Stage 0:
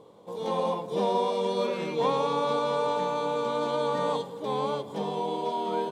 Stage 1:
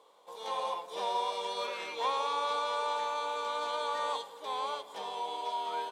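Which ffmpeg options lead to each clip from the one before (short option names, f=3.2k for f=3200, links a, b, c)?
-af "highpass=950"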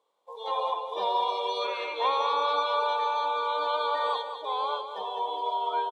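-filter_complex "[0:a]afftdn=nr=19:nf=-42,asplit=2[a][b];[b]aecho=0:1:200|400|600:0.355|0.106|0.0319[c];[a][c]amix=inputs=2:normalize=0,volume=5.5dB"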